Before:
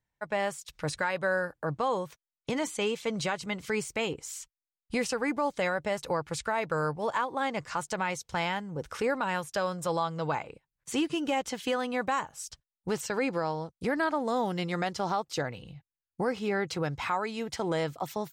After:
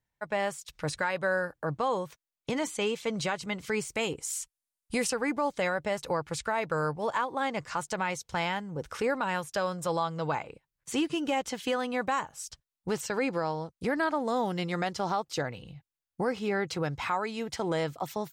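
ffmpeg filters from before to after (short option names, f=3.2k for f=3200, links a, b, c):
-filter_complex "[0:a]asettb=1/sr,asplit=3[a][b][c];[a]atrim=end=3.924[d];[b]atrim=start=3.92:end=5.1,asetpts=PTS-STARTPTS,afade=t=in:d=0.004:c=qsin,afade=t=out:st=1.176:d=0.004:c=qsin,equalizer=f=10k:t=o:w=1:g=9.5[e];[c]atrim=start=5.096[f];[d][e]acrossfade=d=0.004:c1=hsin:c2=qsin[g];[g][f]acrossfade=d=0.004:c1=qsin:c2=hsin"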